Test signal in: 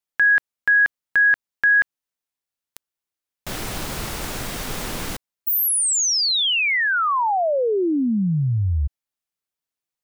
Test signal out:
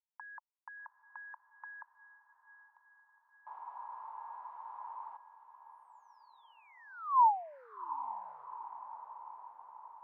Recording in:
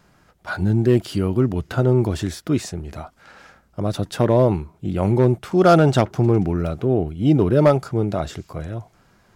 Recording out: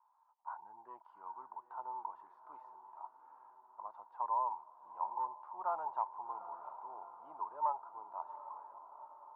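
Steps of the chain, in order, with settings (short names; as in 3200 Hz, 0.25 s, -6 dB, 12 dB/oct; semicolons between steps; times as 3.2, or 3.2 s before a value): Butterworth band-pass 950 Hz, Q 5.7; diffused feedback echo 0.781 s, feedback 60%, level -12.5 dB; gain -2 dB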